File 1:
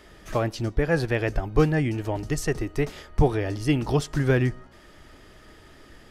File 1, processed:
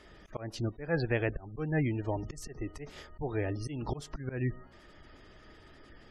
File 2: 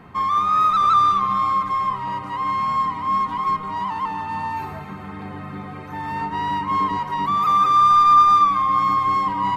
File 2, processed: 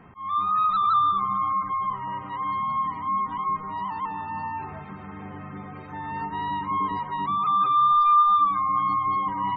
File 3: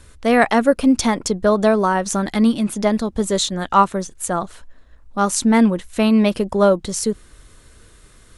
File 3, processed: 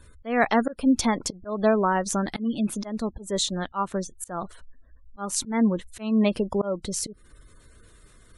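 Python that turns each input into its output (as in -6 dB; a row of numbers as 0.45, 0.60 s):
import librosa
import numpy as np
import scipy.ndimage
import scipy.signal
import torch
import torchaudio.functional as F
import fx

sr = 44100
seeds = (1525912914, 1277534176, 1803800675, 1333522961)

y = fx.auto_swell(x, sr, attack_ms=221.0)
y = fx.spec_gate(y, sr, threshold_db=-30, keep='strong')
y = y * librosa.db_to_amplitude(-5.0)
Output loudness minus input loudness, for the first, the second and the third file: -10.0, -5.0, -8.0 LU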